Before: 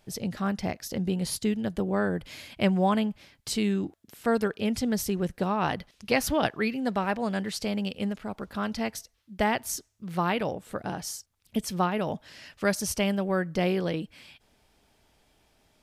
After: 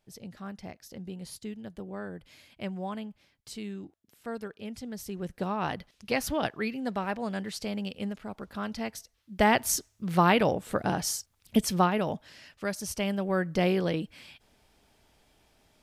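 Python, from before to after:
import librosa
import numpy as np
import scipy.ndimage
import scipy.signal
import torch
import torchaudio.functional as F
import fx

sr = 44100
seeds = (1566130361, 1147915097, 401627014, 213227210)

y = fx.gain(x, sr, db=fx.line((4.94, -12.0), (5.42, -4.0), (8.98, -4.0), (9.6, 5.0), (11.57, 5.0), (12.7, -7.0), (13.5, 0.5)))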